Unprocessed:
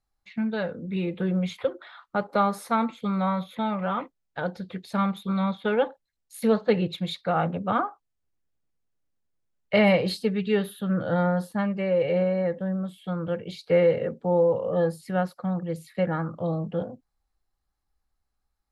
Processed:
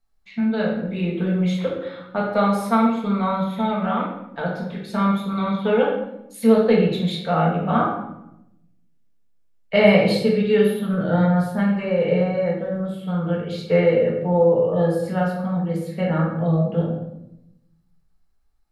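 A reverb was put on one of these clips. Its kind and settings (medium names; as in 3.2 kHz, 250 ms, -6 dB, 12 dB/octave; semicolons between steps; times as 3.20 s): simulated room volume 250 m³, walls mixed, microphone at 1.6 m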